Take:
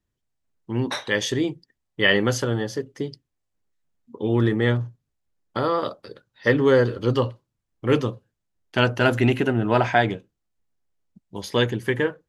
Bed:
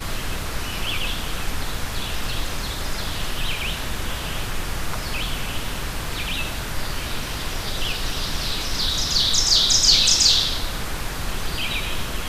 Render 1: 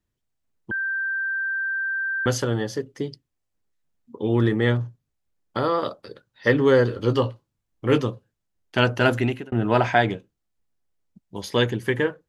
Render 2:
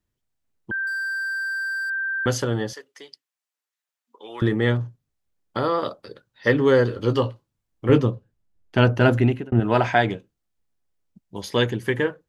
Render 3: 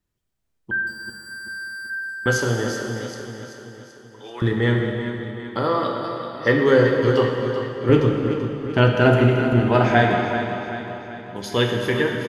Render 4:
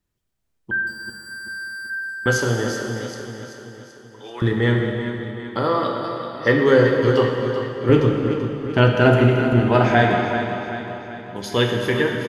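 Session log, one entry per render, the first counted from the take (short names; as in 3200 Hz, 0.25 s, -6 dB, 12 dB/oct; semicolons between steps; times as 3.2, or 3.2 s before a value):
0.71–2.26 bleep 1570 Hz -23 dBFS; 6.95–7.98 doubler 19 ms -10.5 dB; 9.1–9.52 fade out
0.87–1.9 overdrive pedal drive 35 dB, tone 1900 Hz, clips at -22.5 dBFS; 2.73–4.42 HPF 1000 Hz; 7.89–9.6 tilt -2 dB/oct
feedback echo 0.385 s, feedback 52%, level -9.5 dB; plate-style reverb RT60 2.6 s, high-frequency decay 0.9×, DRR 1 dB
gain +1 dB; limiter -3 dBFS, peak gain reduction 1.5 dB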